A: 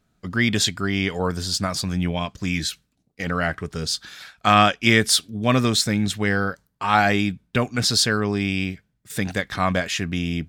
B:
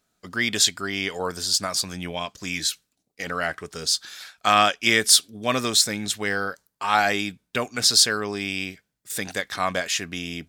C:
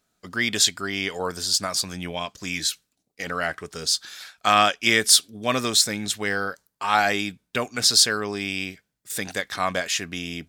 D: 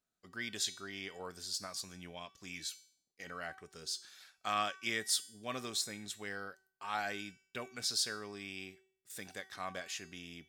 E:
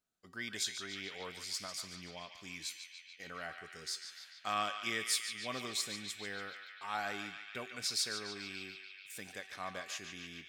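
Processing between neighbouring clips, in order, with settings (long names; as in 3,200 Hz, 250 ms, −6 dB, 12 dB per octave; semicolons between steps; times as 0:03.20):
bass and treble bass −12 dB, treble +7 dB; level −2 dB
no processing that can be heard
tuned comb filter 380 Hz, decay 0.55 s, mix 70%; level −7.5 dB
feedback echo with a band-pass in the loop 145 ms, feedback 85%, band-pass 2,500 Hz, level −6 dB; level −1 dB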